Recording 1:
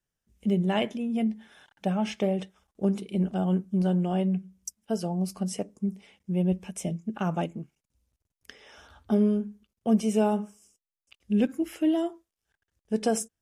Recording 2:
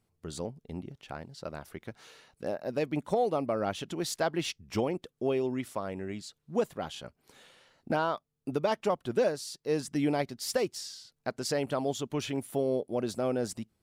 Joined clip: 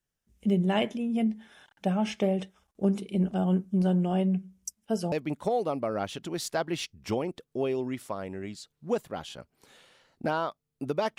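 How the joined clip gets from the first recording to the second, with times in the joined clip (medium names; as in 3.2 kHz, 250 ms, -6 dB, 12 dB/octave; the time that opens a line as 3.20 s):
recording 1
5.12 s: go over to recording 2 from 2.78 s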